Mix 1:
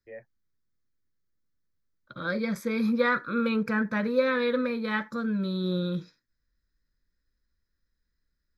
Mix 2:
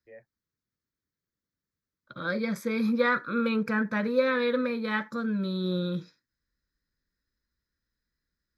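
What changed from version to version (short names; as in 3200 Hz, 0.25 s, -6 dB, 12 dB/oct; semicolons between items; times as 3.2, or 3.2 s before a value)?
first voice -6.0 dB; second voice: add HPF 85 Hz 6 dB/oct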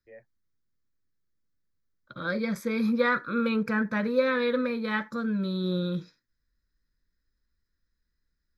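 second voice: remove HPF 85 Hz 6 dB/oct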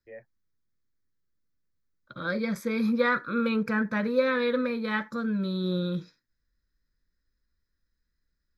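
first voice +4.5 dB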